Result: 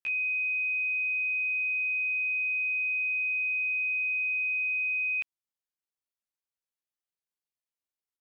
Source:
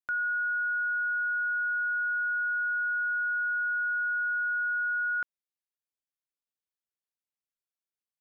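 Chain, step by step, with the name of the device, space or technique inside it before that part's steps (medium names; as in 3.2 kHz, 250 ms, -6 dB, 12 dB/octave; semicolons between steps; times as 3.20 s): chipmunk voice (pitch shift +9.5 st)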